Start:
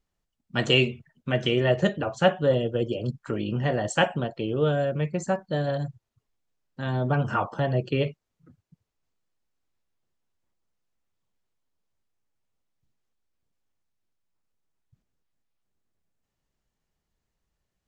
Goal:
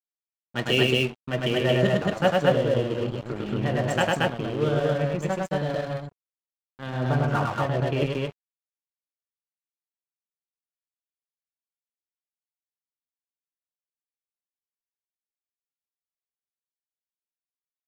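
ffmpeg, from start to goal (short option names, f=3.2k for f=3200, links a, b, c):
-af "highshelf=f=7.1k:g=-7,aecho=1:1:102|227.4:0.794|0.891,aeval=exprs='sgn(val(0))*max(abs(val(0))-0.02,0)':c=same,volume=-1dB"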